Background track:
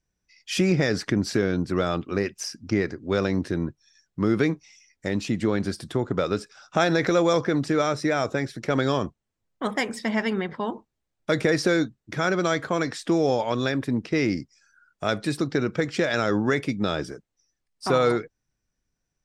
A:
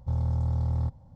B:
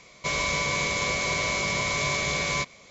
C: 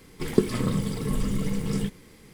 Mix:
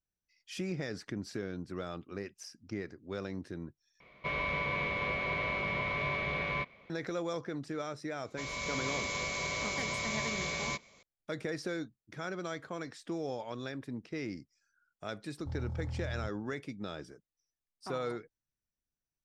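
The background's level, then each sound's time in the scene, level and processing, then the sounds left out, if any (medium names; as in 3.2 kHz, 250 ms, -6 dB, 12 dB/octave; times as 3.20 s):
background track -15.5 dB
4.00 s: replace with B -6 dB + low-pass 2.9 kHz 24 dB/octave
8.13 s: add B -15 dB + level rider gain up to 6 dB
15.39 s: add A -11.5 dB
not used: C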